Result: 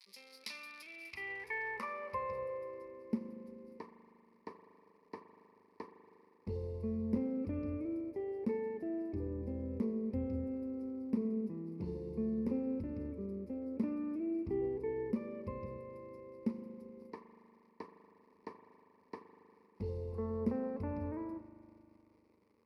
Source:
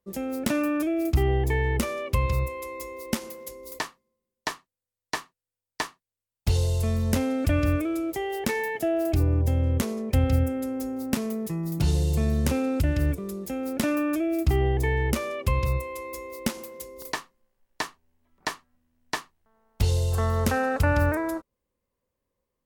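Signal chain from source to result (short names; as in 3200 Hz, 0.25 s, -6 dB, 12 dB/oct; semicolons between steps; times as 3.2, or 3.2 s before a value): crackle 210/s -34 dBFS; band-pass sweep 3900 Hz -> 300 Hz, 0.77–2.98; ripple EQ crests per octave 0.88, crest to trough 13 dB; spring tank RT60 2.8 s, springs 39 ms, chirp 55 ms, DRR 7.5 dB; gain -5.5 dB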